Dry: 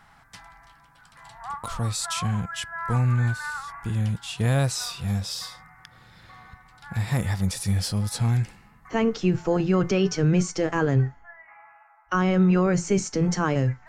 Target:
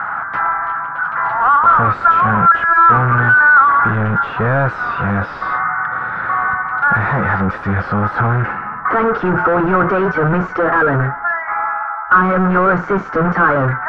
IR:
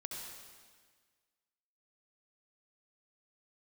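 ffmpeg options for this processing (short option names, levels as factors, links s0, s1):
-filter_complex "[0:a]asplit=2[s0][s1];[s1]highpass=f=720:p=1,volume=63.1,asoftclip=type=tanh:threshold=0.299[s2];[s0][s2]amix=inputs=2:normalize=0,lowpass=f=1100:p=1,volume=0.501,lowpass=f=1400:t=q:w=5.1,volume=1.19"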